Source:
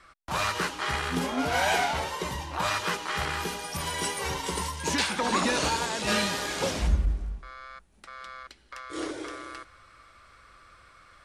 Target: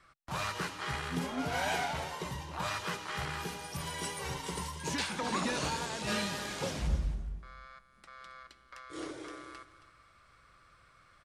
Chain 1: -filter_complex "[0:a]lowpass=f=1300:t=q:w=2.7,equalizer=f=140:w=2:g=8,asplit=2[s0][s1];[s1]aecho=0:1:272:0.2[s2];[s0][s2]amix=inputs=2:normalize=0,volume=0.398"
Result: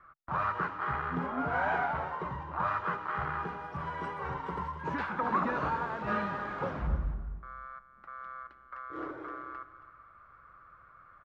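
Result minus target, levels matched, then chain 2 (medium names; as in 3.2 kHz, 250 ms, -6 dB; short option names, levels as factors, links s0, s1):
1 kHz band +4.5 dB
-filter_complex "[0:a]equalizer=f=140:w=2:g=8,asplit=2[s0][s1];[s1]aecho=0:1:272:0.2[s2];[s0][s2]amix=inputs=2:normalize=0,volume=0.398"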